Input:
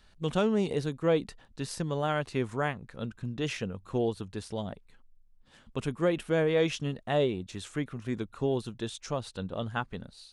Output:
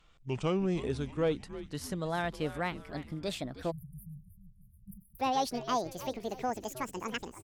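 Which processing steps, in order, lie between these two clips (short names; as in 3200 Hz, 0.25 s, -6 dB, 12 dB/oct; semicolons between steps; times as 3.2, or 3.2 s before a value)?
speed glide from 78% -> 200%; frequency-shifting echo 0.314 s, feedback 45%, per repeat -120 Hz, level -14 dB; in parallel at -11 dB: hard clip -24 dBFS, distortion -12 dB; on the sum: spectral delete 3.71–5.19, 210–9100 Hz; gain -5.5 dB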